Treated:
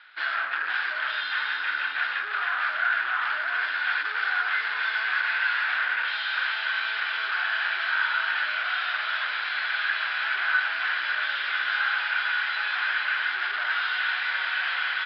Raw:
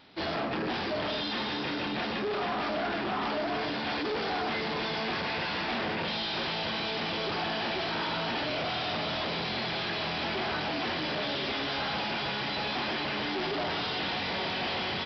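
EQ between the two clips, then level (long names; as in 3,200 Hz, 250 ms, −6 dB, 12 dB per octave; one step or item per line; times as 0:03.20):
high-pass with resonance 1,500 Hz, resonance Q 7.2
low-pass filter 4,000 Hz 24 dB per octave
0.0 dB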